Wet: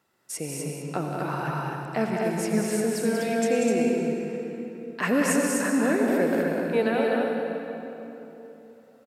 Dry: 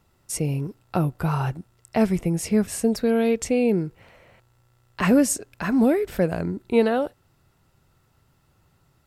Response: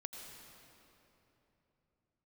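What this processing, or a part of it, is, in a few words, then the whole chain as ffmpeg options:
stadium PA: -filter_complex "[0:a]highpass=240,equalizer=frequency=1700:width_type=o:width=0.45:gain=6,aecho=1:1:189.5|250.7:0.501|0.631[link_01];[1:a]atrim=start_sample=2205[link_02];[link_01][link_02]afir=irnorm=-1:irlink=0,asettb=1/sr,asplit=3[link_03][link_04][link_05];[link_03]atrim=end=0.824[link_06];[link_04]atrim=start=0.82:end=2.24,asetpts=PTS-STARTPTS,afade=type=in:duration=0.004:curve=qsin,afade=type=out:start_time=1.416:duration=0.004:curve=qsin,acrossover=split=7200[link_07][link_08];[link_08]acompressor=threshold=-57dB:ratio=4:attack=1:release=60[link_09];[link_07][link_09]amix=inputs=2:normalize=0[link_10];[link_05]atrim=start=2.236[link_11];[link_06][link_10]acrossfade=duration=0.004:curve1=hsin:curve2=qsin[link_12];[link_12][link_11]acrossfade=duration=0.004:curve1=qsin:curve2=hsin"

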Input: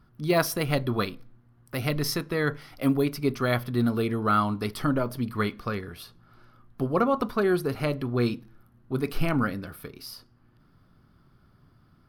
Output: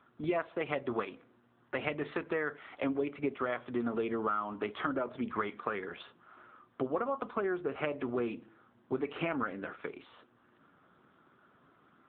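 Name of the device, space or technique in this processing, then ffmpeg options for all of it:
voicemail: -af "highpass=370,lowpass=3100,acompressor=threshold=-34dB:ratio=8,volume=5dB" -ar 8000 -c:a libopencore_amrnb -b:a 7950

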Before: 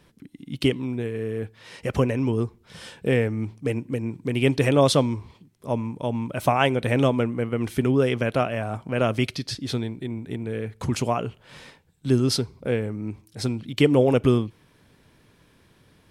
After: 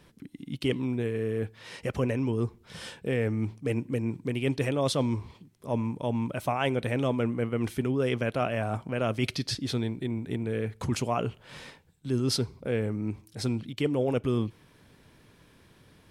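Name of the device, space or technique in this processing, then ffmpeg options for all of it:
compression on the reversed sound: -af "areverse,acompressor=threshold=-24dB:ratio=5,areverse"

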